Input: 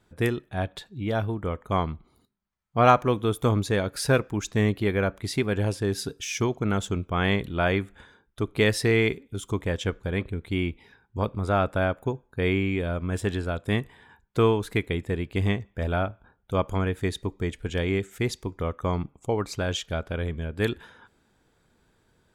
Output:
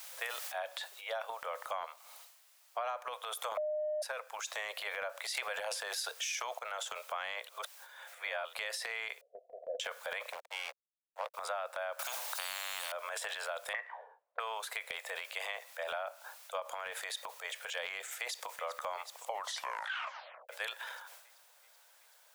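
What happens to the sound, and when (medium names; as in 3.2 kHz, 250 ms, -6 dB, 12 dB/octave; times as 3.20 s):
0.52 s: noise floor step -50 dB -66 dB
3.57–4.02 s: bleep 609 Hz -10 dBFS
5.35–6.59 s: gain +11.5 dB
7.49–8.54 s: reverse
9.21–9.80 s: Chebyshev low-pass 730 Hz, order 10
10.32–11.34 s: hysteresis with a dead band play -27.5 dBFS
11.99–12.92 s: spectrum-flattening compressor 10:1
13.73–14.40 s: touch-sensitive low-pass 230–1900 Hz up, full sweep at -25.5 dBFS
16.60–17.45 s: compression 2:1, threshold -28 dBFS
18.00–18.56 s: echo throw 380 ms, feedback 75%, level -17.5 dB
19.30 s: tape stop 1.19 s
whole clip: steep high-pass 540 Hz 72 dB/octave; transient shaper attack -2 dB, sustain +10 dB; compression 12:1, threshold -36 dBFS; trim +1 dB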